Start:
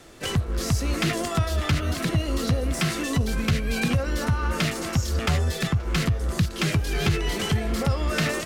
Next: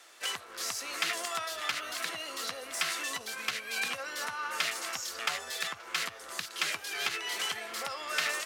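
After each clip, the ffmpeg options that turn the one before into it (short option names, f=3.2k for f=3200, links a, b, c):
-af "highpass=970,volume=-2.5dB"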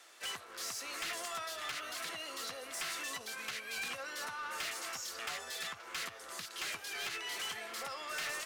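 -af "asoftclip=type=tanh:threshold=-31.5dB,volume=-3dB"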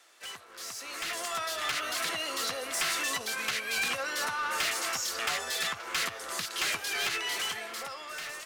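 -af "dynaudnorm=f=220:g=11:m=11dB,volume=-1.5dB"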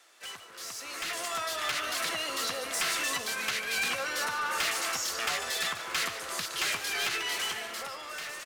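-filter_complex "[0:a]asplit=6[a][b][c][d][e][f];[b]adelay=146,afreqshift=-32,volume=-11.5dB[g];[c]adelay=292,afreqshift=-64,volume=-17.3dB[h];[d]adelay=438,afreqshift=-96,volume=-23.2dB[i];[e]adelay=584,afreqshift=-128,volume=-29dB[j];[f]adelay=730,afreqshift=-160,volume=-34.9dB[k];[a][g][h][i][j][k]amix=inputs=6:normalize=0"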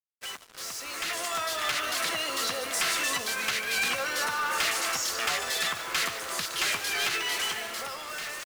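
-af "acrusher=bits=6:mix=0:aa=0.5,volume=2.5dB"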